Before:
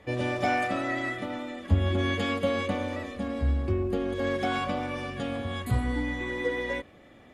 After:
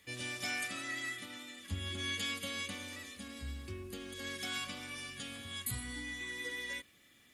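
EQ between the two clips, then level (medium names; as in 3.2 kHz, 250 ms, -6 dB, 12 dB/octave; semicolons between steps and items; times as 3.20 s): RIAA curve recording; amplifier tone stack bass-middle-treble 6-0-2; +10.0 dB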